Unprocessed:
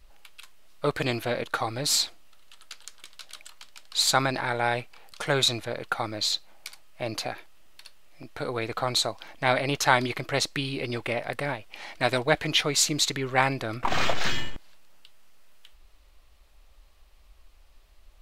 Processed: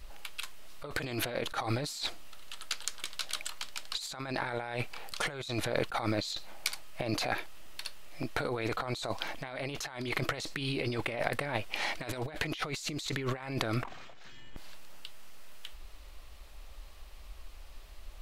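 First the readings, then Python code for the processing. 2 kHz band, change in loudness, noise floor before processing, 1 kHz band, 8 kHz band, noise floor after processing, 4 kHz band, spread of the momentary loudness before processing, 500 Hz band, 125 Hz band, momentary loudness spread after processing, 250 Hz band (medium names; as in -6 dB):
-7.5 dB, -9.0 dB, -56 dBFS, -9.5 dB, -11.5 dB, -48 dBFS, -10.0 dB, 20 LU, -7.5 dB, -4.5 dB, 20 LU, -4.5 dB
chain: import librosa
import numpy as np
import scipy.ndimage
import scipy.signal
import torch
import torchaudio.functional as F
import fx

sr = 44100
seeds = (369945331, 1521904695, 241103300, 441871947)

y = fx.over_compress(x, sr, threshold_db=-36.0, ratio=-1.0)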